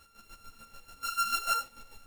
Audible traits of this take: a buzz of ramps at a fixed pitch in blocks of 32 samples; chopped level 6.8 Hz, depth 60%, duty 35%; a shimmering, thickened sound

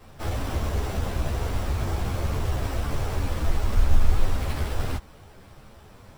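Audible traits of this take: aliases and images of a low sample rate 6600 Hz, jitter 0%; a shimmering, thickened sound

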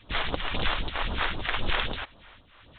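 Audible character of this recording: tremolo triangle 1.9 Hz, depth 60%; phasing stages 2, 3.8 Hz, lowest notch 130–2100 Hz; G.726

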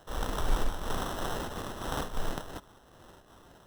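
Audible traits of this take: aliases and images of a low sample rate 2300 Hz, jitter 0%; noise-modulated level

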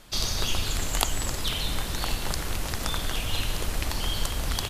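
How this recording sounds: noise floor -33 dBFS; spectral tilt -3.0 dB/oct

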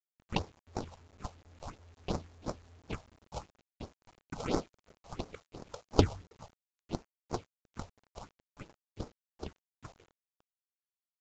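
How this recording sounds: aliases and images of a low sample rate 1800 Hz, jitter 20%; phasing stages 4, 2.9 Hz, lowest notch 290–2900 Hz; a quantiser's noise floor 10-bit, dither none; µ-law

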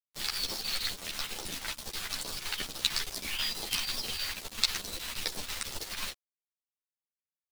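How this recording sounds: phasing stages 2, 2.3 Hz, lowest notch 340–2000 Hz; a quantiser's noise floor 6-bit, dither none; chopped level 6.2 Hz, depth 60%, duty 80%; a shimmering, thickened sound

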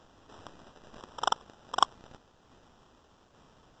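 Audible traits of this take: aliases and images of a low sample rate 2200 Hz, jitter 0%; tremolo saw down 1.2 Hz, depth 40%; a quantiser's noise floor 12-bit, dither triangular; Vorbis

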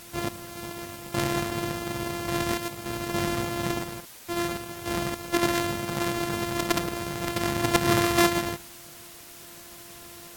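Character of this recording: a buzz of ramps at a fixed pitch in blocks of 128 samples; random-step tremolo, depth 90%; a quantiser's noise floor 8-bit, dither triangular; AAC

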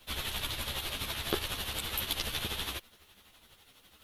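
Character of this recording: tremolo triangle 12 Hz, depth 70%; a quantiser's noise floor 12-bit, dither none; a shimmering, thickened sound

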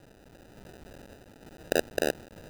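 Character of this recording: a quantiser's noise floor 8-bit, dither triangular; random-step tremolo; aliases and images of a low sample rate 1100 Hz, jitter 0%

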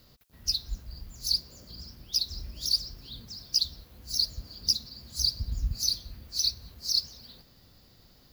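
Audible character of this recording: noise floor -59 dBFS; spectral tilt -1.0 dB/oct

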